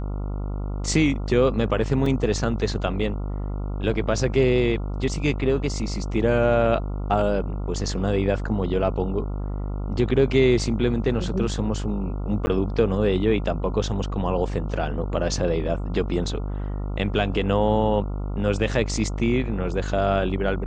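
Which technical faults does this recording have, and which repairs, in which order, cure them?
mains buzz 50 Hz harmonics 28 −28 dBFS
0:02.06: drop-out 3 ms
0:12.46–0:12.47: drop-out 10 ms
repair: hum removal 50 Hz, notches 28
repair the gap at 0:02.06, 3 ms
repair the gap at 0:12.46, 10 ms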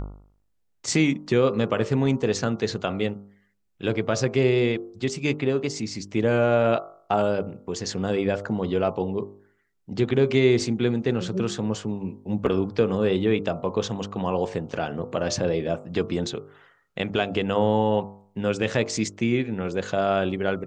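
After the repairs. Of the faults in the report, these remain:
none of them is left

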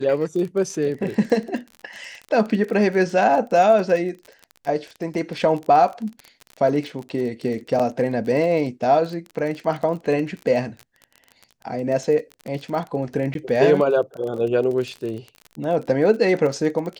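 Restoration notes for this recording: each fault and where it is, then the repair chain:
surface crackle 27 per second −28 dBFS
0:07.79–0:07.80: drop-out 6.2 ms
0:13.34–0:13.35: drop-out 12 ms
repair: click removal
repair the gap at 0:07.79, 6.2 ms
repair the gap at 0:13.34, 12 ms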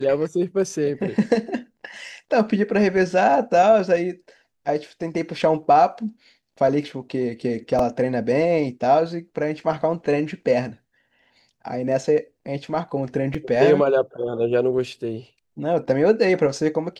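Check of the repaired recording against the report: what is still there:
none of them is left

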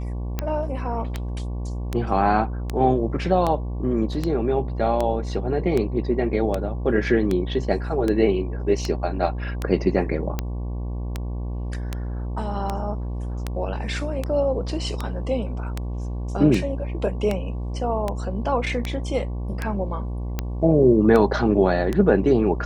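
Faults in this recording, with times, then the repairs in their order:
mains buzz 60 Hz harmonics 19 −28 dBFS
scratch tick 78 rpm −11 dBFS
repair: click removal
hum removal 60 Hz, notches 19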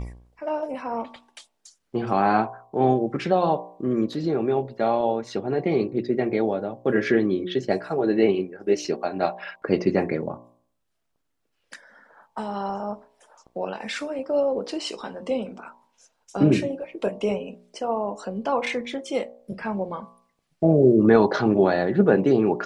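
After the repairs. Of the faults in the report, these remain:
none of them is left

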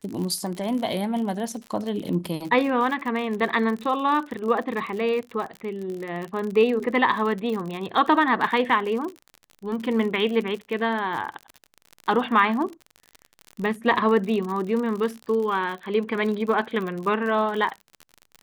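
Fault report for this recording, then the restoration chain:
surface crackle 53 per second −30 dBFS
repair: click removal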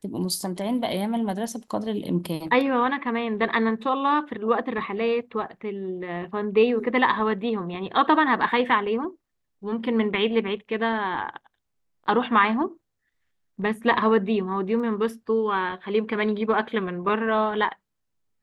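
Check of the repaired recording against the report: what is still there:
none of them is left

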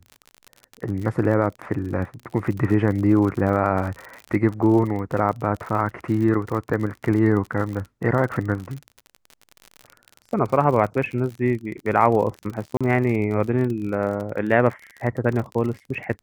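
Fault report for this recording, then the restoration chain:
surface crackle 50 per second −29 dBFS
0:12.77–0:12.81: drop-out 36 ms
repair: click removal
repair the gap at 0:12.77, 36 ms

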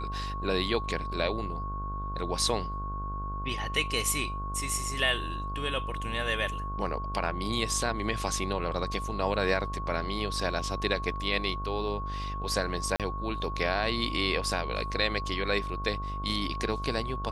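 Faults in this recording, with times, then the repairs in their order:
mains buzz 50 Hz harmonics 31 −36 dBFS
whistle 1,100 Hz −36 dBFS
0:12.96–0:13.00: drop-out 37 ms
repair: hum removal 50 Hz, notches 31
notch filter 1,100 Hz, Q 30
repair the gap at 0:12.96, 37 ms

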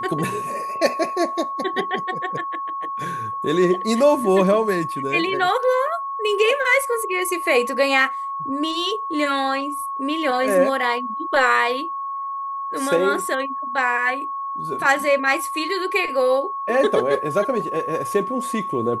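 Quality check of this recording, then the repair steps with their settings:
whistle 1,100 Hz −25 dBFS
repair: notch filter 1,100 Hz, Q 30

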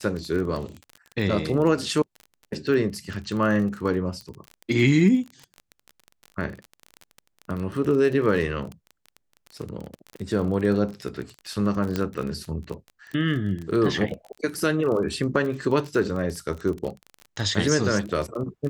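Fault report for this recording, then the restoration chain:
surface crackle 28 per second −30 dBFS
0:04.21: click −25 dBFS
0:11.96: click −12 dBFS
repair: click removal

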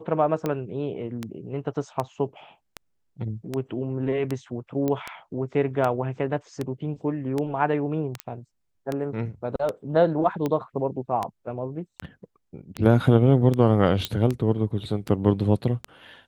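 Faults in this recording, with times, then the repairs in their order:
scratch tick 78 rpm −14 dBFS
0:04.88: click −14 dBFS
0:08.20: click −14 dBFS
0:14.05: click −10 dBFS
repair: click removal

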